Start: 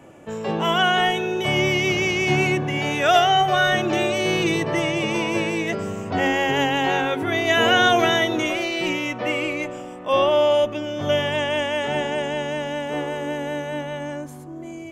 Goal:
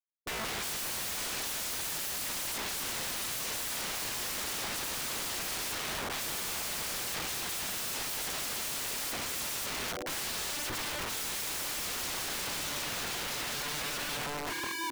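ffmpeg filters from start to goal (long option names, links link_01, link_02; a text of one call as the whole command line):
ffmpeg -i in.wav -af "afftfilt=real='re*gte(hypot(re,im),0.0891)':imag='im*gte(hypot(re,im),0.0891)':win_size=1024:overlap=0.75,aecho=1:1:6.3:0.35,areverse,acompressor=threshold=-29dB:ratio=10,areverse,aecho=1:1:261:0.335,aeval=exprs='(mod(70.8*val(0)+1,2)-1)/70.8':channel_layout=same,volume=6dB" out.wav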